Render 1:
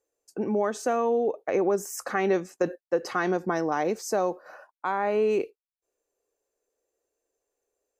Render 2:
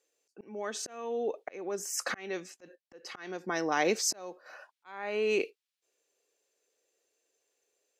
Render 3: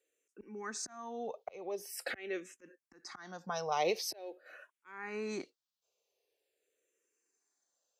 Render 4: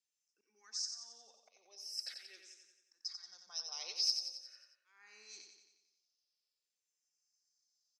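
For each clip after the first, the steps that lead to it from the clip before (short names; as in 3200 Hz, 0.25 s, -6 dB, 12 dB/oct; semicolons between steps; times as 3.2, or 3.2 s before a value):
weighting filter D; auto swell 0.771 s
endless phaser -0.45 Hz; gain -1.5 dB
band-pass 5200 Hz, Q 9.2; on a send: feedback echo 90 ms, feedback 56%, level -6.5 dB; on the sum: gain +10.5 dB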